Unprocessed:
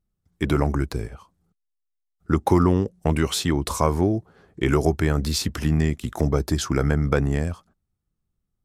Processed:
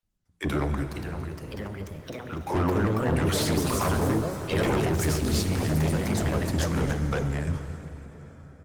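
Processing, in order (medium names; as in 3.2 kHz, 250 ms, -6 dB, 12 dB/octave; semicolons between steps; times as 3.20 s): bands offset in time highs, lows 30 ms, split 500 Hz; ever faster or slower copies 610 ms, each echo +3 st, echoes 3; saturation -20.5 dBFS, distortion -9 dB; 0.83–2.49 s: compression 6:1, threshold -32 dBFS, peak gain reduction 9 dB; hum notches 60/120/180/240 Hz; on a send: feedback echo behind a high-pass 285 ms, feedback 36%, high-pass 4 kHz, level -11.5 dB; on the sum: plate-style reverb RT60 3.9 s, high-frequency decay 0.75×, DRR 7 dB; Opus 20 kbps 48 kHz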